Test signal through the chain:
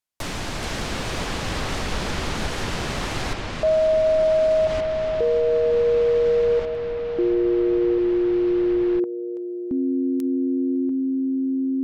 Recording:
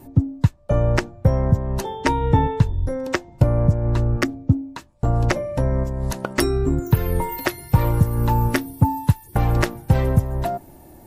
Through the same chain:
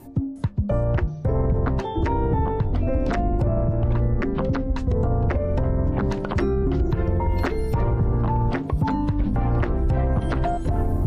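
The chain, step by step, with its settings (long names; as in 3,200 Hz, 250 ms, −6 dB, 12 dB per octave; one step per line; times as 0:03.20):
treble cut that deepens with the level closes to 1,900 Hz, closed at −17 dBFS
delay with pitch and tempo change per echo 358 ms, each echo −5 semitones, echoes 3
brickwall limiter −13.5 dBFS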